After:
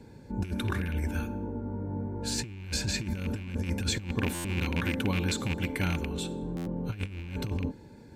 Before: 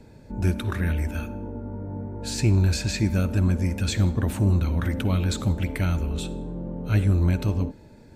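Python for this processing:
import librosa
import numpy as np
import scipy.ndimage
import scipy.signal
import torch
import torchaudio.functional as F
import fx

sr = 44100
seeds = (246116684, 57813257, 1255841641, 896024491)

y = fx.rattle_buzz(x, sr, strikes_db=-20.0, level_db=-18.0)
y = fx.low_shelf(y, sr, hz=95.0, db=-11.5, at=(4.11, 6.42))
y = fx.over_compress(y, sr, threshold_db=-25.0, ratio=-0.5)
y = fx.notch_comb(y, sr, f0_hz=640.0)
y = fx.buffer_glitch(y, sr, at_s=(4.34, 6.56), block=512, repeats=8)
y = y * librosa.db_to_amplitude(-3.0)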